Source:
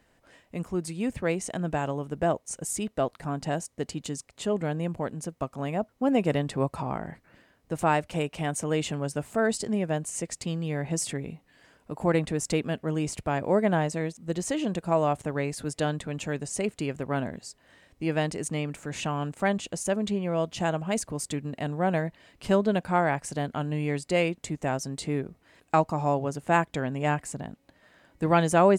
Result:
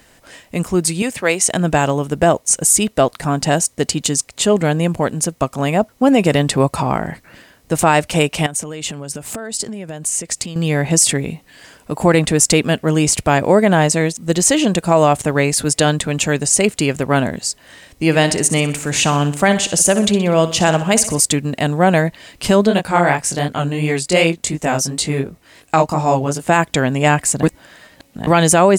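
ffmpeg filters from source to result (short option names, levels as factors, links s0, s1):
-filter_complex "[0:a]asettb=1/sr,asplit=3[s0][s1][s2];[s0]atrim=end=1.024[s3];[s1]atrim=start=1.02:end=1.49,asetpts=PTS-STARTPTS,afade=t=in:d=0.004:c=qsin,afade=t=out:st=0.466:d=0.004:c=qsin,highpass=f=550:p=1[s4];[s2]atrim=start=1.486[s5];[s3][s4]acrossfade=d=0.004:c1=hsin:c2=qsin[s6];[s6][s5]acrossfade=d=0.004:c1=qsin:c2=hsin,asettb=1/sr,asplit=3[s7][s8][s9];[s7]atrim=end=8.464[s10];[s8]atrim=start=8.46:end=10.56,asetpts=PTS-STARTPTS,afade=t=in:d=0.004:c=qsin,afade=t=out:st=2.096:d=0.004:c=qsin,acompressor=threshold=0.0141:ratio=16:attack=3.2:release=140:knee=1:detection=peak[s11];[s9]atrim=start=10.556[s12];[s10][s11]acrossfade=d=0.004:c1=hsin:c2=qsin[s13];[s13][s12]acrossfade=d=0.004:c1=qsin:c2=hsin,asettb=1/sr,asplit=3[s14][s15][s16];[s14]atrim=end=18.044[s17];[s15]atrim=start=18.04:end=21.2,asetpts=PTS-STARTPTS,afade=t=in:d=0.004:c=qsin,afade=t=out:st=3.156:d=0.004:c=qsin,aecho=1:1:62|124|186|248|310:0.224|0.107|0.0516|0.0248|0.0119,atrim=end_sample=139356[s18];[s16]atrim=start=21.196[s19];[s17][s18]acrossfade=d=0.004:c1=hsin:c2=qsin[s20];[s20][s19]acrossfade=d=0.004:c1=qsin:c2=hsin,asplit=3[s21][s22][s23];[s21]afade=t=out:st=22.68:d=0.02[s24];[s22]flanger=delay=18:depth=4.6:speed=2.8,afade=t=in:st=22.68:d=0.02,afade=t=out:st=26.47:d=0.02[s25];[s23]afade=t=in:st=26.47:d=0.02[s26];[s24][s25][s26]amix=inputs=3:normalize=0,asplit=3[s27][s28][s29];[s27]atrim=end=27.432[s30];[s28]atrim=start=27.428:end=28.272,asetpts=PTS-STARTPTS,areverse[s31];[s29]atrim=start=28.268[s32];[s30][s31]acrossfade=d=0.004:c1=hsin:c2=hsin[s33];[s33][s32]acrossfade=d=0.004:c1=hsin:c2=hsin,highshelf=f=2900:g=10,alimiter=level_in=5.01:limit=0.891:release=50:level=0:latency=1,volume=0.891"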